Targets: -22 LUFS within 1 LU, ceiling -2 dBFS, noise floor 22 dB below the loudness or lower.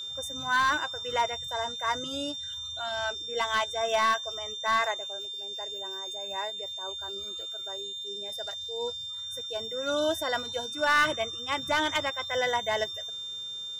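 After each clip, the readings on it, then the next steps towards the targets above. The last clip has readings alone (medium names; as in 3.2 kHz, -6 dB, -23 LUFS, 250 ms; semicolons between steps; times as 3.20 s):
clipped samples 0.3%; clipping level -18.5 dBFS; steady tone 3.6 kHz; tone level -35 dBFS; loudness -29.5 LUFS; peak level -18.5 dBFS; loudness target -22.0 LUFS
-> clip repair -18.5 dBFS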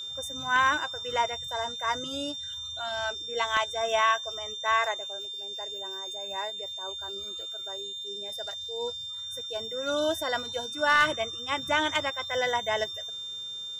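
clipped samples 0.0%; steady tone 3.6 kHz; tone level -35 dBFS
-> band-stop 3.6 kHz, Q 30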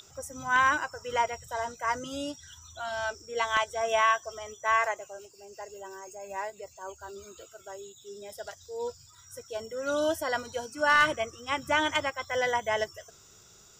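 steady tone not found; loudness -29.0 LUFS; peak level -10.0 dBFS; loudness target -22.0 LUFS
-> trim +7 dB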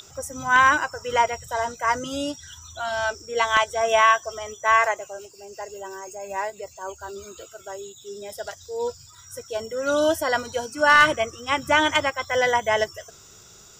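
loudness -22.0 LUFS; peak level -3.0 dBFS; noise floor -49 dBFS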